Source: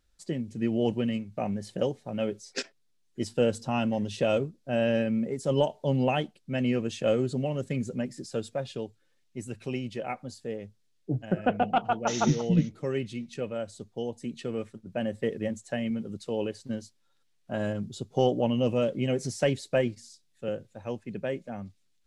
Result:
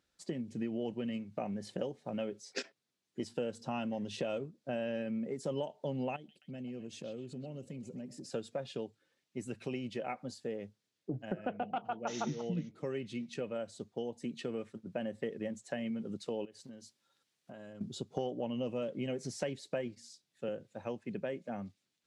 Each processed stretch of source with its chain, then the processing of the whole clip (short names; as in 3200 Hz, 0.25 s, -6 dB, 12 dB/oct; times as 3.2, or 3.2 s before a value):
6.16–8.3 bell 1400 Hz -12 dB 2.6 oct + compressor 4:1, threshold -41 dBFS + delay with a stepping band-pass 0.128 s, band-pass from 3500 Hz, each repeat -0.7 oct, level -8 dB
16.45–17.81 high shelf 4600 Hz +6.5 dB + compressor 12:1, threshold -45 dBFS
whole clip: HPF 150 Hz 12 dB/oct; high shelf 8100 Hz -9 dB; compressor 4:1, threshold -35 dBFS